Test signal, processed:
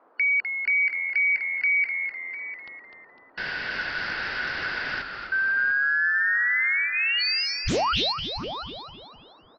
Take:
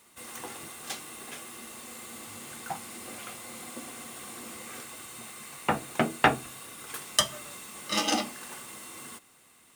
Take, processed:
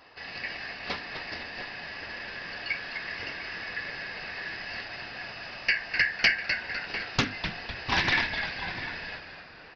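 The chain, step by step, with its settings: four-band scrambler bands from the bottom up 3142; high shelf 4300 Hz -6.5 dB; notch 2400 Hz, Q 13; in parallel at -1 dB: compressor, threshold -35 dBFS; on the sum: band noise 260–1300 Hz -62 dBFS; soft clip -16 dBFS; notches 50/100/150/200/250/300 Hz; on a send: frequency-shifting echo 0.252 s, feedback 46%, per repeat -86 Hz, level -7.5 dB; on the sum: downsampling 11025 Hz; outdoor echo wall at 120 m, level -10 dB; Doppler distortion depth 0.57 ms; gain +3 dB

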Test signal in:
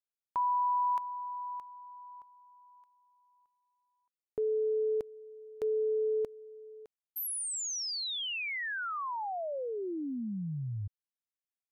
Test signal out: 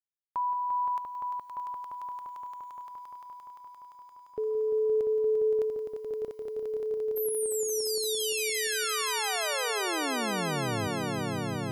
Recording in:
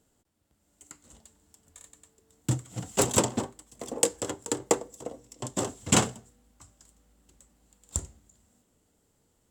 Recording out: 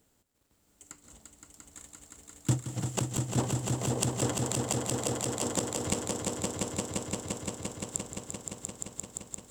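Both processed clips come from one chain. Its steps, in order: bit-crush 12-bit; flipped gate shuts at -15 dBFS, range -26 dB; swelling echo 0.173 s, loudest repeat 5, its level -5 dB

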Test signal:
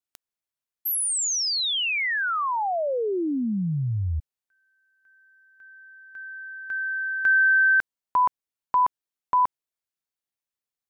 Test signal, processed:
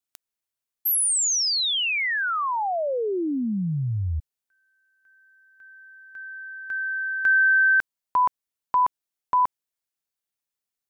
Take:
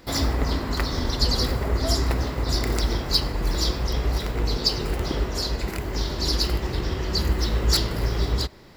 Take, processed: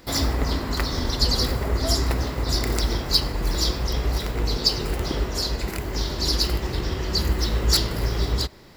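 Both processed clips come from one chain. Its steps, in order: high shelf 4900 Hz +4 dB

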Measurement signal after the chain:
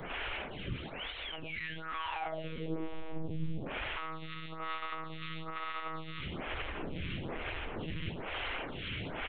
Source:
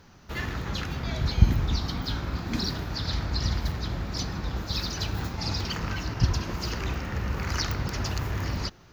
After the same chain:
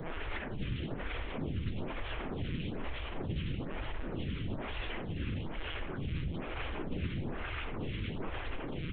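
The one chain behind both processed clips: delta modulation 16 kbps, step -17.5 dBFS; bell 1100 Hz -11.5 dB 2.5 oct; resonator 750 Hz, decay 0.44 s, mix 70%; tube stage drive 41 dB, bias 0.45; doubler 17 ms -4 dB; tape echo 91 ms, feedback 75%, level -6 dB, low-pass 2500 Hz; monotone LPC vocoder at 8 kHz 160 Hz; photocell phaser 1.1 Hz; gain +7.5 dB

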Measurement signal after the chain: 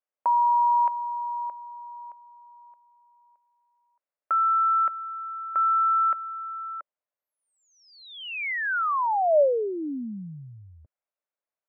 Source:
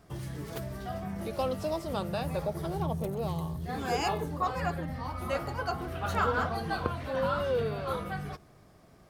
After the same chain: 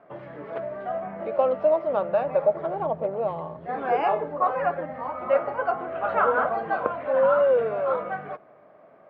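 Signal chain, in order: speaker cabinet 350–2100 Hz, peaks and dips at 360 Hz -4 dB, 590 Hz +9 dB, 1800 Hz -3 dB; gain +6.5 dB

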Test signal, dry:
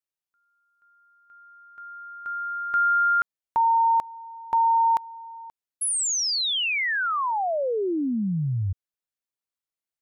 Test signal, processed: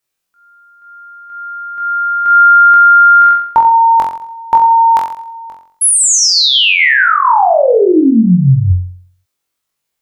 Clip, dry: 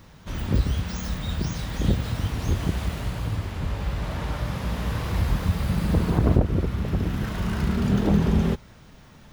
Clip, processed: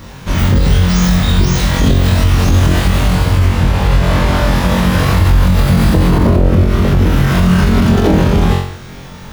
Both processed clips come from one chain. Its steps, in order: flutter echo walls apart 3.8 m, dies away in 0.54 s; maximiser +15.5 dB; gain -1 dB

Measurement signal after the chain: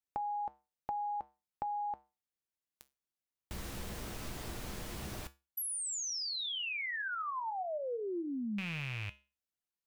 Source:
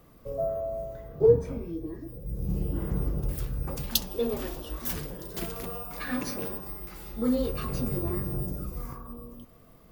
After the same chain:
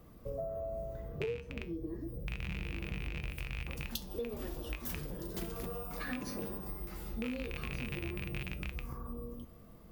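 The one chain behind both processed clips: rattling part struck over -30 dBFS, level -14 dBFS; low shelf 410 Hz +5.5 dB; resonator 68 Hz, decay 0.25 s, harmonics odd, mix 60%; compressor 8:1, threshold -37 dBFS; gain +1.5 dB

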